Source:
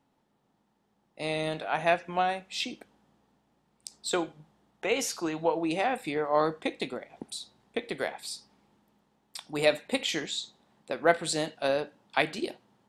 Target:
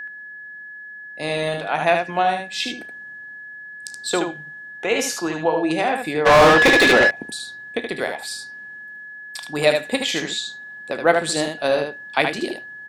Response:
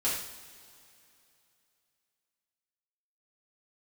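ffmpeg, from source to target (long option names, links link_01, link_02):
-filter_complex "[0:a]aeval=exprs='val(0)+0.0141*sin(2*PI*1700*n/s)':channel_layout=same,aecho=1:1:33|75:0.158|0.531,asplit=3[link_01][link_02][link_03];[link_01]afade=type=out:start_time=6.25:duration=0.02[link_04];[link_02]asplit=2[link_05][link_06];[link_06]highpass=frequency=720:poles=1,volume=34dB,asoftclip=type=tanh:threshold=-11dB[link_07];[link_05][link_07]amix=inputs=2:normalize=0,lowpass=frequency=3300:poles=1,volume=-6dB,afade=type=in:start_time=6.25:duration=0.02,afade=type=out:start_time=7.09:duration=0.02[link_08];[link_03]afade=type=in:start_time=7.09:duration=0.02[link_09];[link_04][link_08][link_09]amix=inputs=3:normalize=0,volume=6.5dB"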